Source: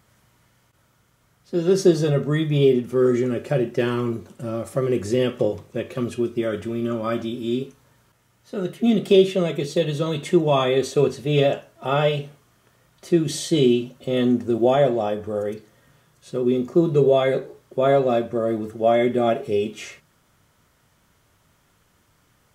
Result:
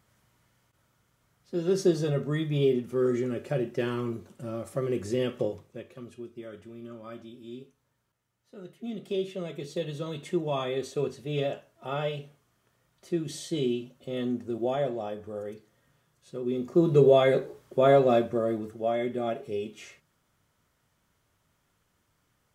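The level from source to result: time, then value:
0:05.42 −7.5 dB
0:06.00 −18 dB
0:08.89 −18 dB
0:09.76 −11 dB
0:16.44 −11 dB
0:16.93 −2 dB
0:18.21 −2 dB
0:18.92 −10.5 dB

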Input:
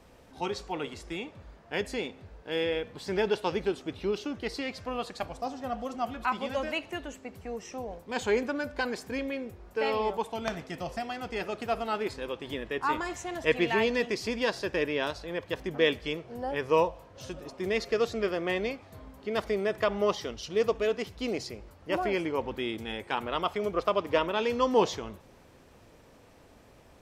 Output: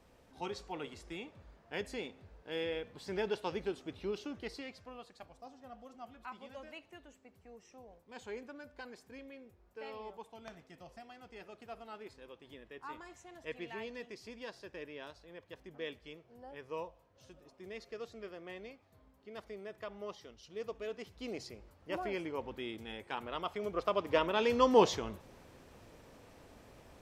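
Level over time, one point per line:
0:04.41 −8 dB
0:05.05 −17.5 dB
0:20.38 −17.5 dB
0:21.43 −9 dB
0:23.44 −9 dB
0:24.59 −1 dB

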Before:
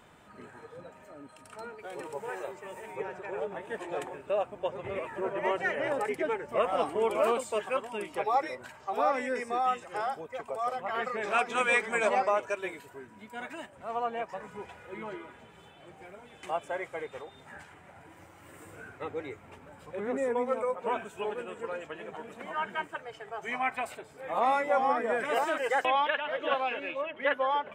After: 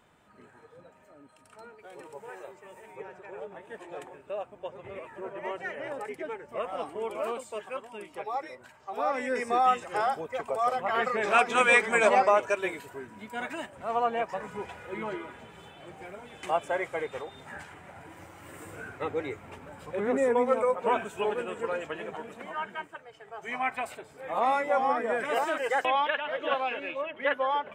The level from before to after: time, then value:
0:08.80 −6 dB
0:09.50 +5 dB
0:21.99 +5 dB
0:23.11 −7 dB
0:23.60 +0.5 dB

